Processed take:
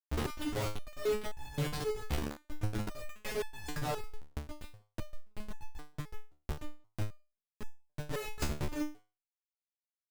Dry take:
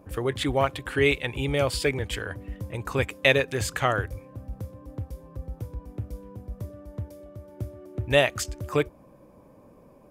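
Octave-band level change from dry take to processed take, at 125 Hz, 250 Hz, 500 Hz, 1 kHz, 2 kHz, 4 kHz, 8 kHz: −9.0, −8.0, −13.0, −11.5, −17.5, −14.0, −9.5 decibels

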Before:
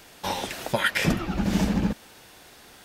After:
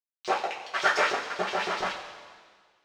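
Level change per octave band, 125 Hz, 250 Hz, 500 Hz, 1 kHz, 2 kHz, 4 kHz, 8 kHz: −23.5, −17.5, +0.5, +4.0, +1.0, −2.0, −5.5 decibels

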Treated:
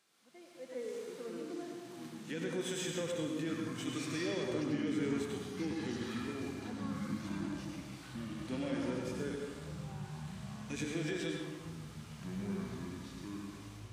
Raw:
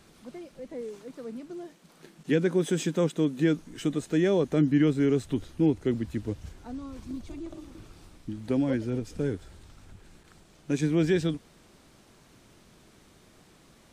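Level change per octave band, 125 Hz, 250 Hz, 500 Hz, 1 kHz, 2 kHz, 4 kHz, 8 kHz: −10.5, −10.0, −10.5, −3.5, −4.5, −2.0, −2.0 decibels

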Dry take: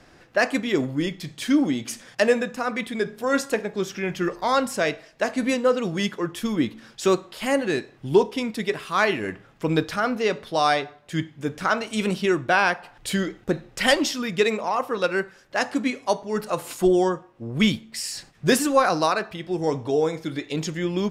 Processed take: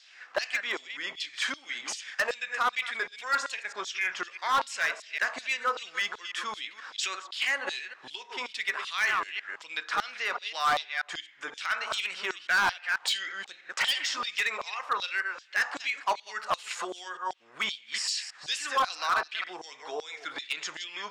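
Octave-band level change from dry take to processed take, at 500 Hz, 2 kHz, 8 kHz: −18.0, −1.5, −4.5 decibels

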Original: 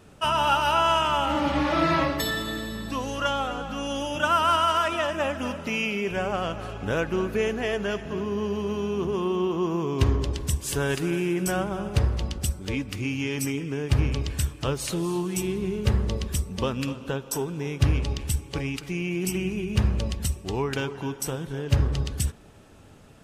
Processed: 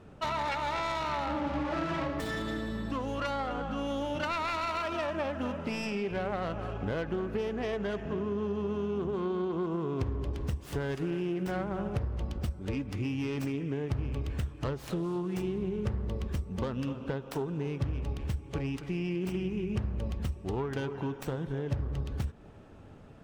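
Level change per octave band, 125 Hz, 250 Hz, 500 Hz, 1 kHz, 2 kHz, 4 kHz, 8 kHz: −7.0, −5.0, −6.0, −9.0, −9.0, −12.5, −19.0 decibels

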